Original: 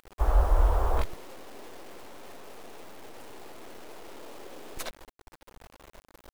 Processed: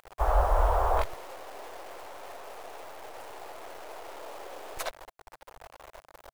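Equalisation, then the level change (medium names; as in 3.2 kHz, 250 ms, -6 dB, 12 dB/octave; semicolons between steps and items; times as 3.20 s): FFT filter 130 Hz 0 dB, 200 Hz -10 dB, 660 Hz +11 dB, 3.7 kHz +4 dB; -3.5 dB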